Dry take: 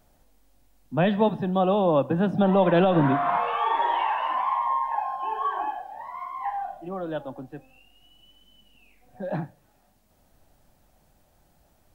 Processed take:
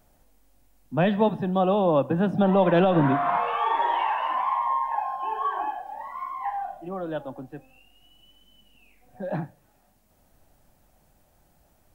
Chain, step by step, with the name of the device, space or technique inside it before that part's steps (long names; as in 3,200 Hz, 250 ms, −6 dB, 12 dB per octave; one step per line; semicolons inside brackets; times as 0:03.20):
exciter from parts (in parallel at −11.5 dB: high-pass filter 3,100 Hz 6 dB per octave + soft clipping −27.5 dBFS, distortion −19 dB + high-pass filter 3,000 Hz 24 dB per octave)
0:05.86–0:06.34: on the sum: comb filter 3.6 ms, depth 64%